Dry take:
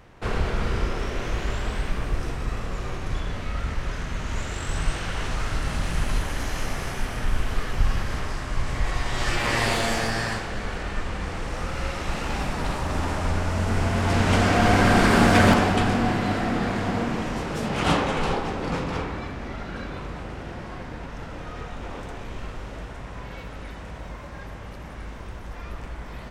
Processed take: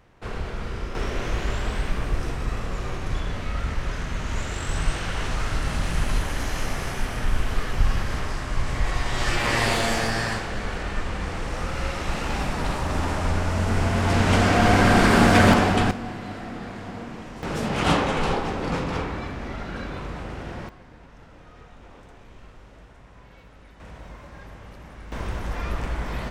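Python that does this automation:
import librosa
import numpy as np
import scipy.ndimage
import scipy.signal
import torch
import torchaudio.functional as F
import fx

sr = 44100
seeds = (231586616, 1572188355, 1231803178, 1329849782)

y = fx.gain(x, sr, db=fx.steps((0.0, -6.0), (0.95, 1.0), (15.91, -10.0), (17.43, 1.0), (20.69, -12.0), (23.8, -4.5), (25.12, 7.5)))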